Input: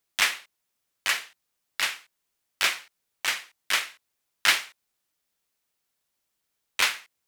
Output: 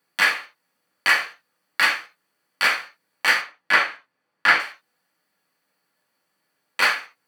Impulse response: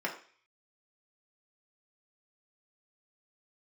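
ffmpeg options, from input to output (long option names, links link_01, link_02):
-filter_complex "[0:a]asettb=1/sr,asplit=3[link_01][link_02][link_03];[link_01]atrim=end=3.414[link_04];[link_02]atrim=start=3.41:end=4.6,asetpts=PTS-STARTPTS,afade=type=in:duration=0.004:curve=qsin,afade=type=out:start_time=1.186:duration=0.004:curve=qsin,lowpass=frequency=2300:poles=1[link_05];[link_03]atrim=start=4.596[link_06];[link_04][link_05]acrossfade=duration=0.004:curve1=hsin:curve2=qsin[link_07];[link_07][link_06]acrossfade=duration=0.004:curve1=qsin:curve2=hsin,alimiter=limit=-14dB:level=0:latency=1:release=396[link_08];[1:a]atrim=start_sample=2205,atrim=end_sample=3528,asetrate=37926,aresample=44100[link_09];[link_08][link_09]afir=irnorm=-1:irlink=0,volume=5.5dB"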